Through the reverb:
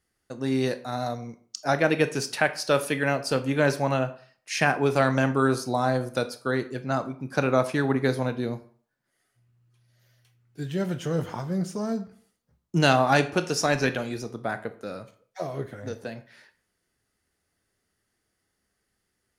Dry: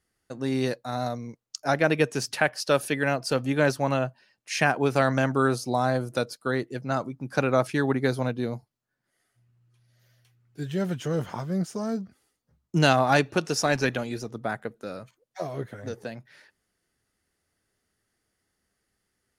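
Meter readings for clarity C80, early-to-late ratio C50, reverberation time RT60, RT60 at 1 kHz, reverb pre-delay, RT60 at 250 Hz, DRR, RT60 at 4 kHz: 18.5 dB, 14.5 dB, 0.50 s, 0.50 s, 19 ms, 0.45 s, 10.0 dB, 0.35 s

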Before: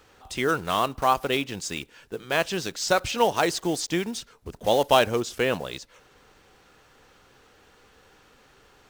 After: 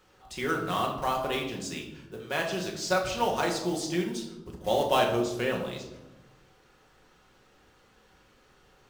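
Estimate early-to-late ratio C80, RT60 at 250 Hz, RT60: 9.0 dB, 1.6 s, 1.0 s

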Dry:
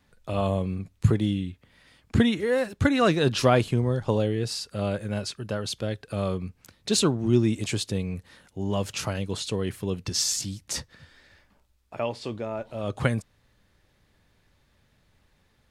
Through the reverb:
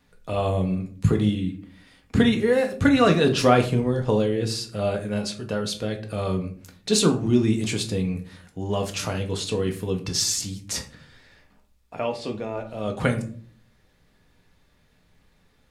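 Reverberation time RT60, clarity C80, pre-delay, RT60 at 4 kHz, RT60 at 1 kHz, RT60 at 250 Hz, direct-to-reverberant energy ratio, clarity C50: 0.50 s, 17.0 dB, 4 ms, 0.30 s, 0.40 s, 0.80 s, 3.0 dB, 12.5 dB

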